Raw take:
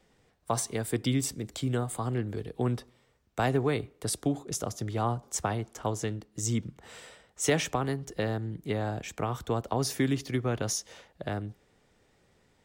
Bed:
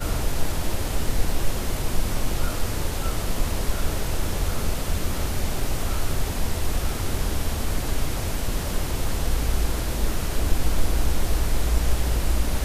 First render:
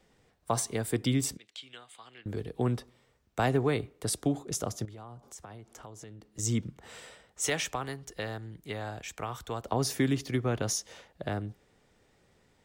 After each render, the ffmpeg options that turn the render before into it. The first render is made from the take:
-filter_complex "[0:a]asettb=1/sr,asplit=3[a][b][c];[a]atrim=end=1.374[d];[b]atrim=start=1.37:end=2.26,asetpts=PTS-STARTPTS,afade=t=in:d=0.004:c=qsin,afade=t=out:st=0.886:d=0.004:c=qsin,bandpass=f=3k:t=q:w=2.1[e];[c]atrim=start=2.256[f];[d][e]acrossfade=d=0.004:c1=hsin:c2=qsin[g];[g][f]acrossfade=d=0.004:c1=qsin:c2=hsin,asettb=1/sr,asplit=3[h][i][j];[h]atrim=end=4.854[k];[i]atrim=start=4.85:end=6.39,asetpts=PTS-STARTPTS,afade=t=in:d=0.004:c=qsin,afade=t=out:st=1.536:d=0.004:c=qsin,acompressor=threshold=-46dB:ratio=4:attack=3.2:release=140:knee=1:detection=peak[l];[j]atrim=start=6.386[m];[k][l]acrossfade=d=0.004:c1=hsin:c2=qsin[n];[n][m]acrossfade=d=0.004:c1=qsin:c2=hsin,asettb=1/sr,asplit=3[o][p][q];[o]atrim=end=7.484[r];[p]atrim=start=7.48:end=9.64,asetpts=PTS-STARTPTS,afade=t=in:d=0.004:c=qsin,afade=t=out:st=2.156:d=0.004:c=qsin,equalizer=f=210:w=0.34:g=-9.5[s];[q]atrim=start=9.636[t];[r][s]acrossfade=d=0.004:c1=hsin:c2=qsin[u];[u][t]acrossfade=d=0.004:c1=qsin:c2=hsin"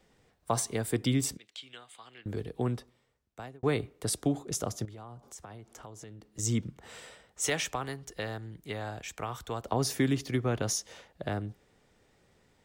-filter_complex "[0:a]asplit=2[a][b];[a]atrim=end=3.63,asetpts=PTS-STARTPTS,afade=t=out:st=2.41:d=1.22[c];[b]atrim=start=3.63,asetpts=PTS-STARTPTS,afade=t=in:d=0.004:c=hsin[d];[c][d]concat=n=2:v=0:a=1"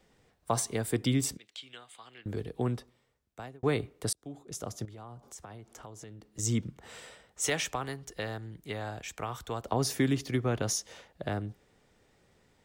-filter_complex "[0:a]asplit=2[a][b];[a]atrim=end=4.13,asetpts=PTS-STARTPTS,afade=t=out:st=4.126:d=0.004:c=hsin[c];[b]atrim=start=4.13,asetpts=PTS-STARTPTS,afade=t=in:d=0.92[d];[c][d]concat=n=2:v=0:a=1"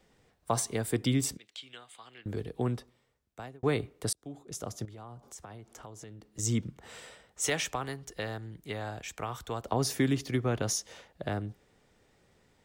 -af anull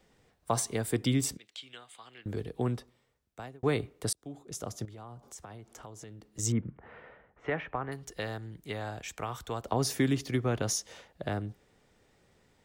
-filter_complex "[0:a]asettb=1/sr,asplit=3[a][b][c];[a]atrim=end=6.524[d];[b]atrim=start=6.52:end=7.92,asetpts=PTS-STARTPTS,afade=t=in:d=0.004:c=qsin,afade=t=out:st=1.396:d=0.004:c=qsin,lowpass=f=2k:w=0.5412,lowpass=f=2k:w=1.3066[e];[c]atrim=start=7.916[f];[d][e]acrossfade=d=0.004:c1=hsin:c2=qsin[g];[g][f]acrossfade=d=0.004:c1=qsin:c2=hsin"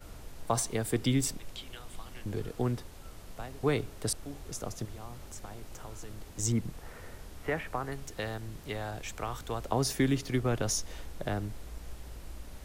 -filter_complex "[1:a]volume=-22dB[a];[0:a][a]amix=inputs=2:normalize=0"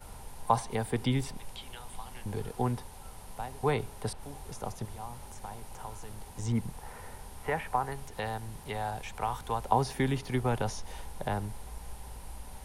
-filter_complex "[0:a]acrossover=split=4100[a][b];[b]acompressor=threshold=-51dB:ratio=4:attack=1:release=60[c];[a][c]amix=inputs=2:normalize=0,superequalizer=6b=0.501:9b=2.82:16b=2.51"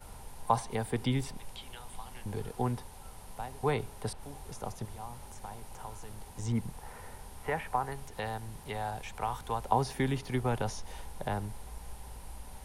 -af "volume=-1.5dB"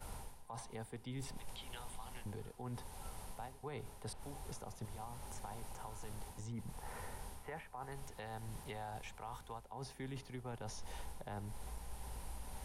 -af "areverse,acompressor=threshold=-38dB:ratio=16,areverse,alimiter=level_in=12dB:limit=-24dB:level=0:latency=1:release=304,volume=-12dB"

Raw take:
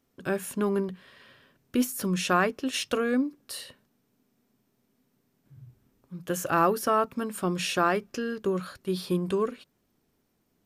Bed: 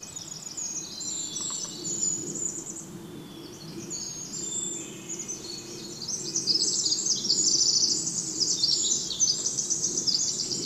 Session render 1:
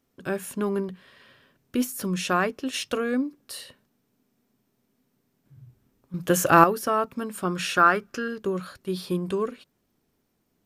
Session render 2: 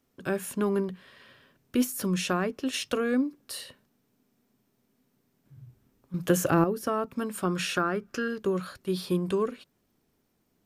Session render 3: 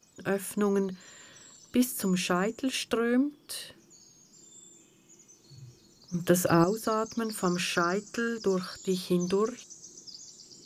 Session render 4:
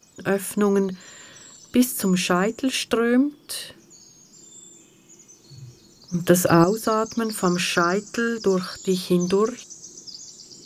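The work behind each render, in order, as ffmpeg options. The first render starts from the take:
-filter_complex "[0:a]asettb=1/sr,asplit=3[a][b][c];[a]atrim=end=7.454[d];[b]atrim=start=7.45:end=8.28,asetpts=PTS-STARTPTS,afade=t=in:d=0.004:c=qsin,afade=t=out:st=0.826:d=0.004:c=qsin,equalizer=f=1.4k:w=2.5:g=11.5[e];[c]atrim=start=8.276[f];[d][e]acrossfade=d=0.004:c1=hsin:c2=qsin[g];[g][f]acrossfade=d=0.004:c1=qsin:c2=hsin,asplit=3[h][i][j];[h]atrim=end=6.142[k];[i]atrim=start=6.138:end=6.642,asetpts=PTS-STARTPTS,volume=8.5dB[l];[j]atrim=start=6.638[m];[k][l]acrossfade=d=0.004:c1=hsin:c2=hsin[n];[n][m]acrossfade=d=0.004:c1=hsin:c2=hsin"
-filter_complex "[0:a]acrossover=split=460[a][b];[b]acompressor=threshold=-28dB:ratio=5[c];[a][c]amix=inputs=2:normalize=0"
-filter_complex "[1:a]volume=-21dB[a];[0:a][a]amix=inputs=2:normalize=0"
-af "volume=7dB"

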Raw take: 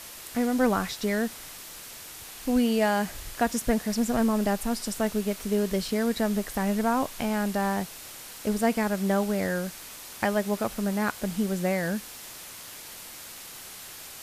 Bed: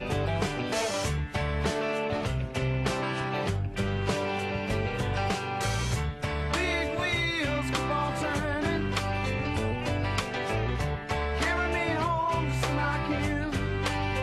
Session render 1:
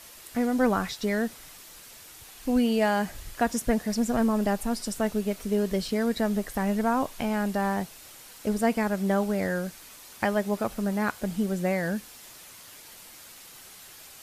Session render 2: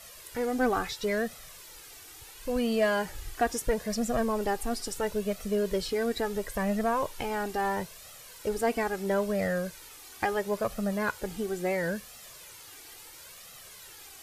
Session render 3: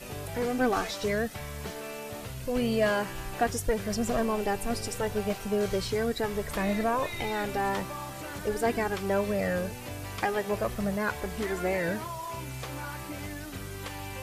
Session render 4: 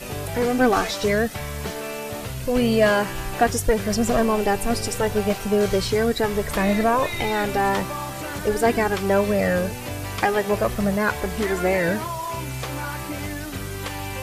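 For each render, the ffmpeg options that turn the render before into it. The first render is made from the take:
-af "afftdn=nr=6:nf=-43"
-filter_complex "[0:a]flanger=delay=1.5:depth=1.2:regen=-5:speed=0.74:shape=triangular,asplit=2[a][b];[b]asoftclip=type=hard:threshold=-28dB,volume=-9.5dB[c];[a][c]amix=inputs=2:normalize=0"
-filter_complex "[1:a]volume=-10dB[a];[0:a][a]amix=inputs=2:normalize=0"
-af "volume=8dB"

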